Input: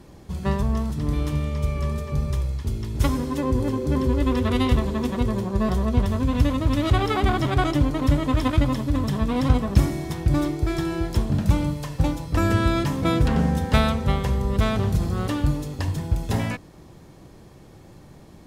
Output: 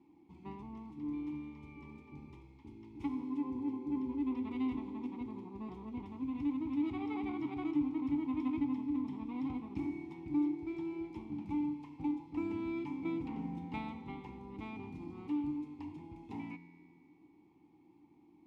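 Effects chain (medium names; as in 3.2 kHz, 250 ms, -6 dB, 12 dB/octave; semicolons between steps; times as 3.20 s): vowel filter u; feedback comb 86 Hz, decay 2 s, mix 70%; trim +4 dB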